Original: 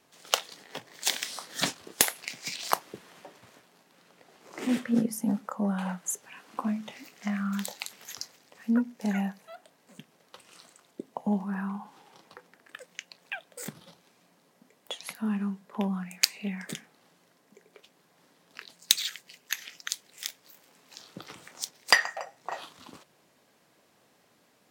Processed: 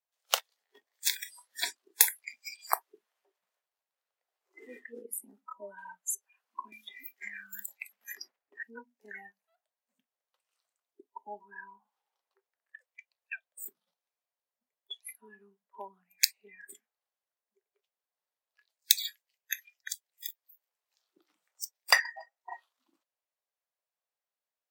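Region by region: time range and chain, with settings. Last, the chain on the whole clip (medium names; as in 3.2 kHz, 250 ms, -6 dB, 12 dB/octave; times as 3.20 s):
6.72–8.63 s: expander -51 dBFS + three bands compressed up and down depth 100%
whole clip: peaking EQ 15 kHz +9.5 dB 0.57 oct; spectral noise reduction 28 dB; high-pass 520 Hz 24 dB/octave; trim -2.5 dB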